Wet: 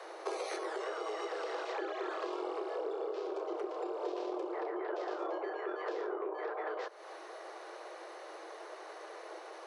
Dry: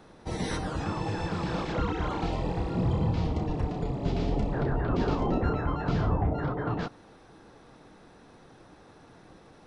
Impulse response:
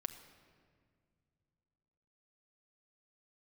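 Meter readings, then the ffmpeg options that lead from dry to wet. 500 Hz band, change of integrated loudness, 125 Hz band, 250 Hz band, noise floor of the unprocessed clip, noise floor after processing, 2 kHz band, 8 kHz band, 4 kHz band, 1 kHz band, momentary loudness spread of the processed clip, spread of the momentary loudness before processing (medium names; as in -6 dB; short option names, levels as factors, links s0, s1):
-2.5 dB, -9.5 dB, under -40 dB, -14.0 dB, -54 dBFS, -49 dBFS, -4.0 dB, no reading, -6.5 dB, -5.5 dB, 10 LU, 5 LU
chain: -af "acompressor=threshold=0.00891:ratio=10,aeval=exprs='0.0335*(cos(1*acos(clip(val(0)/0.0335,-1,1)))-cos(1*PI/2))+0.00944*(cos(2*acos(clip(val(0)/0.0335,-1,1)))-cos(2*PI/2))':c=same,afreqshift=320,volume=1.88"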